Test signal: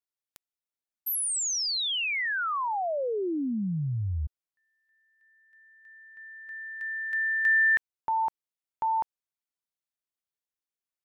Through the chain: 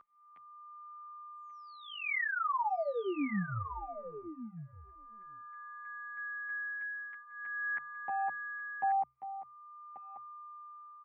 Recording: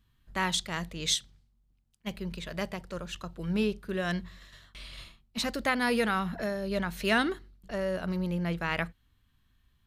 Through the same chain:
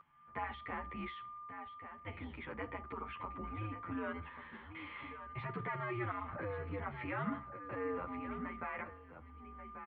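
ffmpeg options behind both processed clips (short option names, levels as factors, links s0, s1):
-filter_complex "[0:a]alimiter=level_in=1.12:limit=0.0631:level=0:latency=1:release=128,volume=0.891,bandreject=f=60:t=h:w=6,bandreject=f=120:t=h:w=6,bandreject=f=180:t=h:w=6,bandreject=f=240:t=h:w=6,aecho=1:1:0.9:0.43,acompressor=threshold=0.00708:ratio=2.5:attack=0.2:release=22:knee=6:detection=peak,asplit=2[s0][s1];[s1]aecho=0:1:1136:0.299[s2];[s0][s2]amix=inputs=2:normalize=0,highpass=f=260:t=q:w=0.5412,highpass=f=260:t=q:w=1.307,lowpass=f=2500:t=q:w=0.5176,lowpass=f=2500:t=q:w=0.7071,lowpass=f=2500:t=q:w=1.932,afreqshift=-110,aeval=exprs='val(0)+0.00178*sin(2*PI*1200*n/s)':c=same,asplit=2[s3][s4];[s4]adelay=9.9,afreqshift=-0.44[s5];[s3][s5]amix=inputs=2:normalize=1,volume=2.82"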